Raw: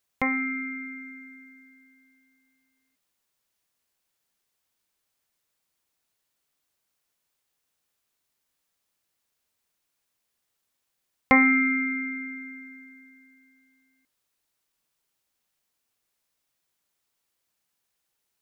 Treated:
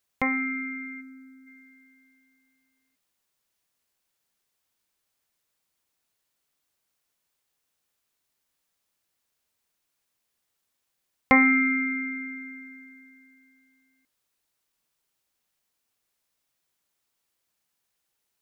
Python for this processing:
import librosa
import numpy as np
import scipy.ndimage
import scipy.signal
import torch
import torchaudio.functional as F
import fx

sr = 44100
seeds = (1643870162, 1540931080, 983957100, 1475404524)

y = fx.peak_eq(x, sr, hz=2000.0, db=-14.5, octaves=0.77, at=(1.0, 1.46), fade=0.02)